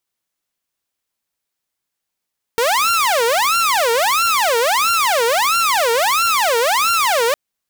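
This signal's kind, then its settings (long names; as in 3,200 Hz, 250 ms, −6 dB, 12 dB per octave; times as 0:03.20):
siren wail 457–1,380 Hz 1.5 per second saw −11 dBFS 4.76 s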